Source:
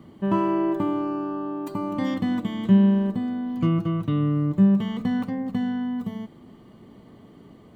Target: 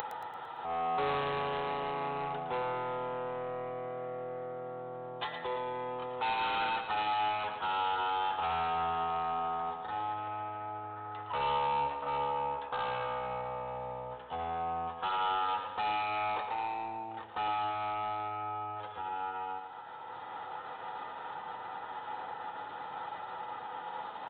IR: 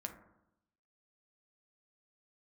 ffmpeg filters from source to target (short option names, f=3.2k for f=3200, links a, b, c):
-filter_complex "[0:a]asetrate=58866,aresample=44100,atempo=0.749154,acompressor=mode=upward:threshold=-28dB:ratio=2.5,highpass=f=2.7k:t=q:w=4.1,asetrate=14068,aresample=44100,aresample=8000,asoftclip=type=tanh:threshold=-37dB,aresample=44100,aemphasis=mode=production:type=75kf,asplit=2[a][b];[b]aecho=0:1:113|226|339|452|565|678:0.398|0.191|0.0917|0.044|0.0211|0.0101[c];[a][c]amix=inputs=2:normalize=0,volume=7dB"